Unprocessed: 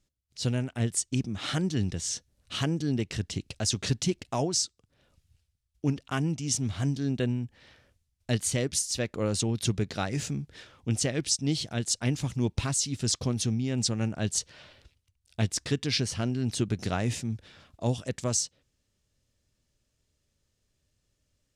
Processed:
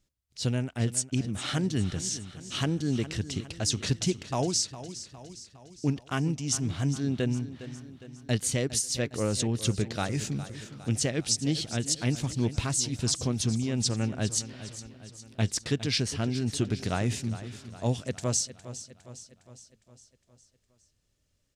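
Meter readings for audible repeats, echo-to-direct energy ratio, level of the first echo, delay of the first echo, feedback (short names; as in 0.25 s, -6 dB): 5, -12.5 dB, -14.0 dB, 0.409 s, 55%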